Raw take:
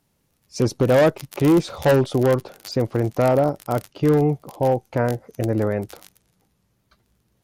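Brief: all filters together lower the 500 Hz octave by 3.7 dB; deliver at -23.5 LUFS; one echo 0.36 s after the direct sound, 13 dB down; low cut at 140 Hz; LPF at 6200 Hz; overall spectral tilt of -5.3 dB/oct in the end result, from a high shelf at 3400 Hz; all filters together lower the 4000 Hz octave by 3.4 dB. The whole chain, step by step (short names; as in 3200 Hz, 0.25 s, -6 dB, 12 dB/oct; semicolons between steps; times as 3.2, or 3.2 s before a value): HPF 140 Hz; LPF 6200 Hz; bell 500 Hz -4.5 dB; high shelf 3400 Hz +4 dB; bell 4000 Hz -6.5 dB; echo 0.36 s -13 dB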